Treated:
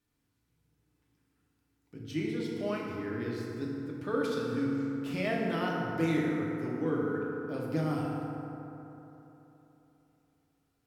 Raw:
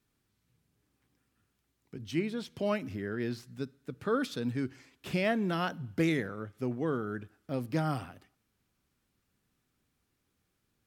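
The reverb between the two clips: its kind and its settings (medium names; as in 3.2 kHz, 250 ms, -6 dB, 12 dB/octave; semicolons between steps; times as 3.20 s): FDN reverb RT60 3.4 s, high-frequency decay 0.4×, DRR -3.5 dB; trim -5.5 dB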